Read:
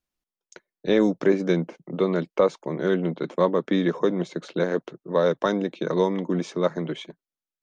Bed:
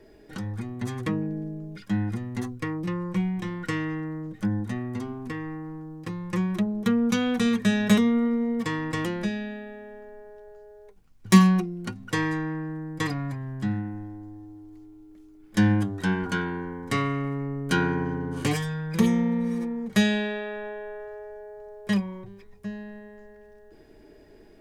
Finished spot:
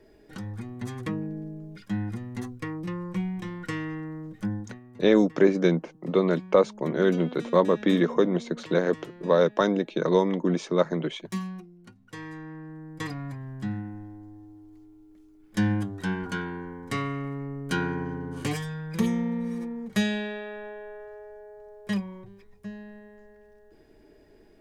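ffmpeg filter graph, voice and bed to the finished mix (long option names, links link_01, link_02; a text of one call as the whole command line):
ffmpeg -i stem1.wav -i stem2.wav -filter_complex "[0:a]adelay=4150,volume=0.5dB[link_01];[1:a]volume=9.5dB,afade=type=out:start_time=4.5:duration=0.3:silence=0.211349,afade=type=in:start_time=12.05:duration=1.34:silence=0.223872[link_02];[link_01][link_02]amix=inputs=2:normalize=0" out.wav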